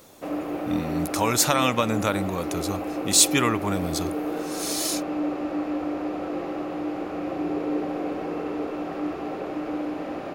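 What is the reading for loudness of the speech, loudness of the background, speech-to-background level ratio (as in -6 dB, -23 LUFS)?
-24.0 LUFS, -30.0 LUFS, 6.0 dB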